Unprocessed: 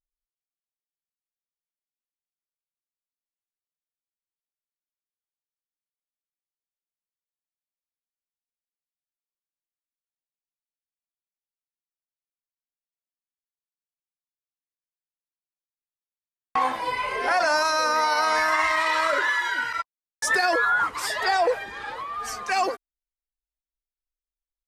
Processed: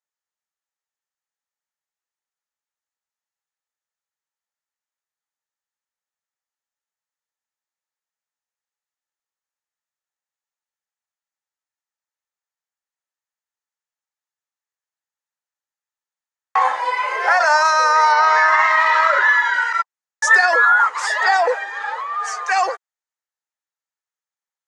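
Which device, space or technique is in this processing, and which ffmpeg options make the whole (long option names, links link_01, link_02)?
phone speaker on a table: -filter_complex "[0:a]asettb=1/sr,asplit=3[link_01][link_02][link_03];[link_01]atrim=end=18.124[link_04];[link_02]atrim=start=18.12:end=19.54,asetpts=PTS-STARTPTS,afade=type=in:duration=0.004:curve=qsin,afade=type=out:start_time=1.416:duration=0.004:curve=qsin,lowpass=5000[link_05];[link_03]atrim=start=19.536[link_06];[link_04][link_05]acrossfade=duration=0.004:curve1=hsin:curve2=qsin[link_07];[link_07][link_06]acrossfade=duration=0.004:curve1=qsin:curve2=hsin,highpass=frequency=460:width=0.5412,highpass=frequency=460:width=1.3066,equalizer=frequency=510:width_type=q:width=4:gain=4,equalizer=frequency=870:width_type=q:width=4:gain=9,equalizer=frequency=1300:width_type=q:width=4:gain=7,equalizer=frequency=1800:width_type=q:width=4:gain=9,equalizer=frequency=6700:width_type=q:width=4:gain=7,lowpass=frequency=8700:width=0.5412,lowpass=frequency=8700:width=1.3066,volume=1dB"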